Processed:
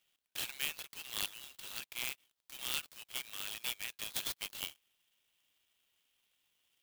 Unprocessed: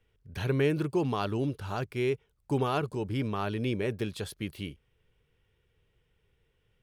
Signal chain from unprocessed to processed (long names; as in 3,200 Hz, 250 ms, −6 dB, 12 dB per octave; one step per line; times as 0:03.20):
four-pole ladder high-pass 2,800 Hz, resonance 40%
converter with an unsteady clock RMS 0.045 ms
level +11.5 dB